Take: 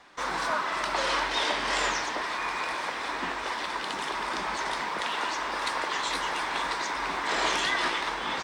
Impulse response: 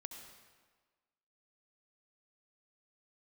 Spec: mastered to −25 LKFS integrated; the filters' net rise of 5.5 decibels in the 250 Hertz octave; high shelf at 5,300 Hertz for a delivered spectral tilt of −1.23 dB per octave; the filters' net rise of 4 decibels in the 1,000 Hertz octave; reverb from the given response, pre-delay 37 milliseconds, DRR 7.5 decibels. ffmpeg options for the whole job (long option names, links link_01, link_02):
-filter_complex "[0:a]equalizer=frequency=250:width_type=o:gain=7,equalizer=frequency=1000:width_type=o:gain=4,highshelf=frequency=5300:gain=5.5,asplit=2[link_01][link_02];[1:a]atrim=start_sample=2205,adelay=37[link_03];[link_02][link_03]afir=irnorm=-1:irlink=0,volume=-3.5dB[link_04];[link_01][link_04]amix=inputs=2:normalize=0"